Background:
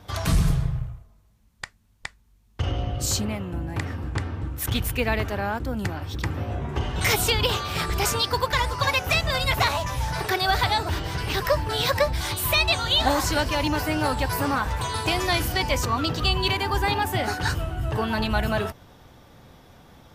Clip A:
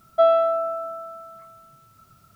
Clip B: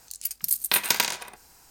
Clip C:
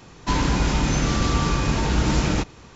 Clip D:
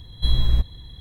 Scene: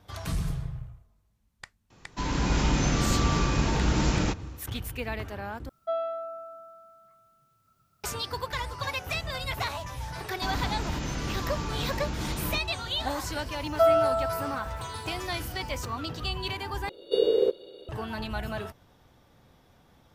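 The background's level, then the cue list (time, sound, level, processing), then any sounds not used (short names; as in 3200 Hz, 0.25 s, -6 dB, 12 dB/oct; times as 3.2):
background -9.5 dB
1.9 add C -11 dB + AGC
5.69 replace with A -13.5 dB
10.15 add C -3 dB + compressor 2.5:1, threshold -30 dBFS
13.61 add A -4 dB
16.89 replace with D -4 dB + ring modulator 450 Hz
not used: B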